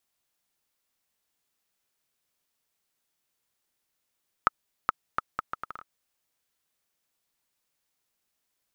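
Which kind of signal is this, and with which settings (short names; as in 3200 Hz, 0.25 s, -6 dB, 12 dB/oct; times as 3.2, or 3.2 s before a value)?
bouncing ball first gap 0.42 s, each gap 0.7, 1280 Hz, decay 20 ms -5.5 dBFS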